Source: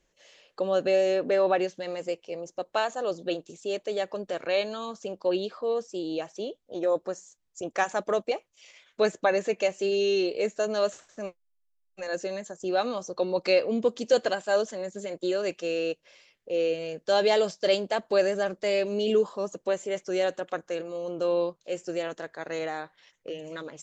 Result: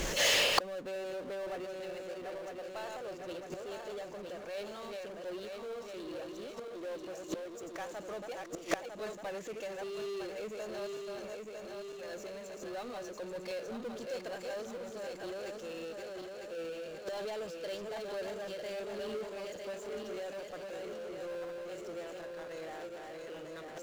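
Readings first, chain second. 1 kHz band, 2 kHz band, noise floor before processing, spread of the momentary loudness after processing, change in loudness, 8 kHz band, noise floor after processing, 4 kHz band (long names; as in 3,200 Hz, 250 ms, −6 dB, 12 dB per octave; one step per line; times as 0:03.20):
−10.5 dB, −6.0 dB, −73 dBFS, 5 LU, −11.0 dB, can't be measured, −47 dBFS, −2.5 dB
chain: feedback delay that plays each chunk backwards 477 ms, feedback 66%, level −5.5 dB
power curve on the samples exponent 0.5
gate with flip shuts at −19 dBFS, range −29 dB
level +6.5 dB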